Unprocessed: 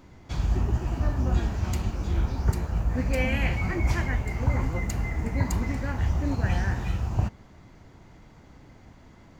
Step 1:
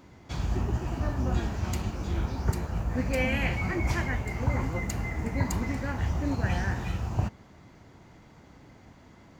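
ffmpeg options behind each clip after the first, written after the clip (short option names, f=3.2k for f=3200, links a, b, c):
-af "highpass=f=86:p=1"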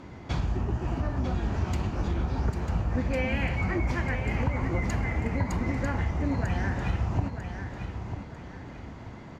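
-af "aemphasis=mode=reproduction:type=50fm,acompressor=threshold=-33dB:ratio=6,aecho=1:1:946|1892|2838|3784:0.398|0.135|0.046|0.0156,volume=8dB"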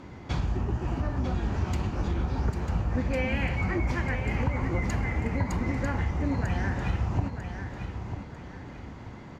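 -af "bandreject=f=660:w=20"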